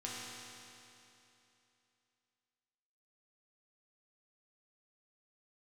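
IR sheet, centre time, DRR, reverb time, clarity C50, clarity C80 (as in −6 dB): 174 ms, −6.5 dB, 2.9 s, −3.0 dB, −1.0 dB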